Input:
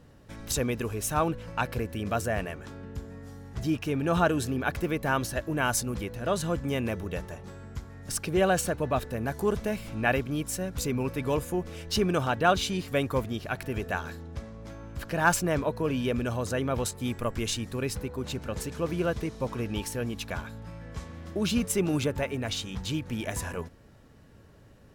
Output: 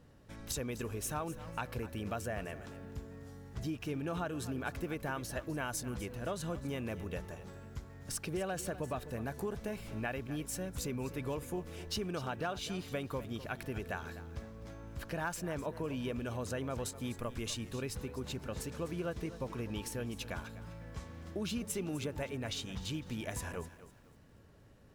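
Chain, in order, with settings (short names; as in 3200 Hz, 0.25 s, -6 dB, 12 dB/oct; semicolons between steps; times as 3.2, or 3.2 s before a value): compressor, threshold -28 dBFS, peak gain reduction 11.5 dB; lo-fi delay 0.252 s, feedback 35%, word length 9-bit, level -14.5 dB; gain -6 dB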